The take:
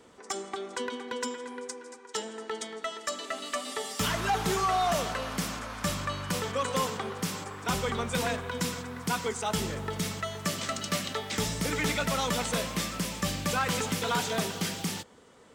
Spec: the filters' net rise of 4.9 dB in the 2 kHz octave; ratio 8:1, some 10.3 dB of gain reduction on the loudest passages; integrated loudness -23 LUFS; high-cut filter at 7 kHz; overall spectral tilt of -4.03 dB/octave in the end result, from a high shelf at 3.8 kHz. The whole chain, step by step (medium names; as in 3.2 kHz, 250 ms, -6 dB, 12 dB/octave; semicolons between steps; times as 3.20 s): low-pass 7 kHz; peaking EQ 2 kHz +7.5 dB; treble shelf 3.8 kHz -5.5 dB; compression 8:1, threshold -34 dBFS; trim +14.5 dB